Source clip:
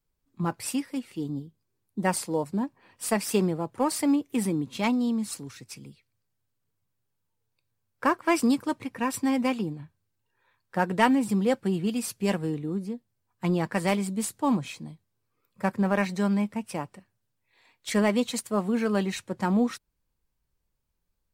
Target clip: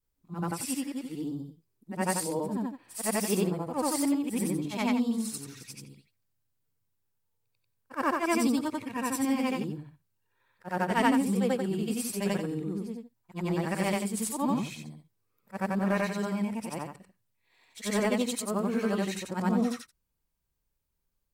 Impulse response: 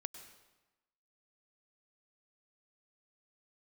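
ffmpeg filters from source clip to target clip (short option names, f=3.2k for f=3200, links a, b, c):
-af "afftfilt=real='re':imag='-im':win_size=8192:overlap=0.75,crystalizer=i=0.5:c=0,volume=1.5dB"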